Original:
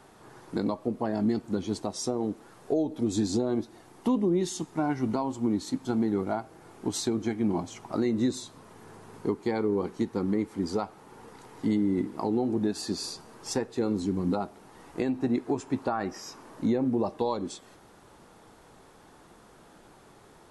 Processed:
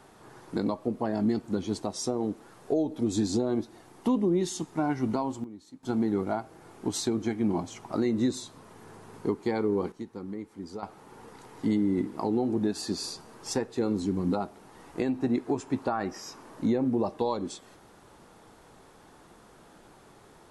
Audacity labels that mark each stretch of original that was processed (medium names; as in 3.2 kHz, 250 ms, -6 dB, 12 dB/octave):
5.130000	6.140000	dip -17.5 dB, fades 0.31 s logarithmic
9.920000	10.830000	gain -10 dB